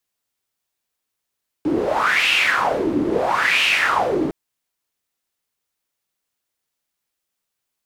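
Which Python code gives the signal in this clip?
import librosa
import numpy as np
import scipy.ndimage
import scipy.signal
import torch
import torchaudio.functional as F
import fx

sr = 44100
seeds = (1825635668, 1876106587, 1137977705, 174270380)

y = fx.wind(sr, seeds[0], length_s=2.66, low_hz=300.0, high_hz=2700.0, q=5.5, gusts=2, swing_db=3.5)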